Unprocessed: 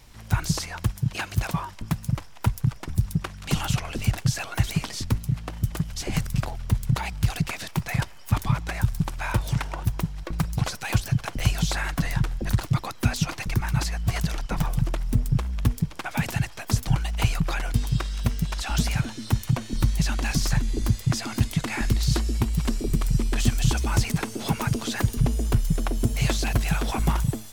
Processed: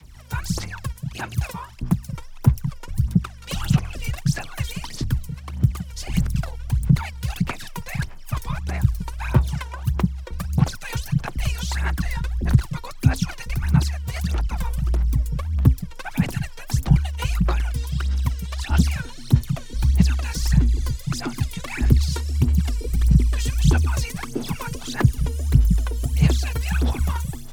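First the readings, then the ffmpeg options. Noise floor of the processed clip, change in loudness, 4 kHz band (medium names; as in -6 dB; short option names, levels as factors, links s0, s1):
-37 dBFS, +3.0 dB, -1.5 dB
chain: -af "aphaser=in_gain=1:out_gain=1:delay=2.2:decay=0.76:speed=1.6:type=sinusoidal,adynamicequalizer=threshold=0.01:dfrequency=600:dqfactor=1.9:tfrequency=600:tqfactor=1.9:attack=5:release=100:ratio=0.375:range=2:mode=cutabove:tftype=bell,afreqshift=17,volume=0.562"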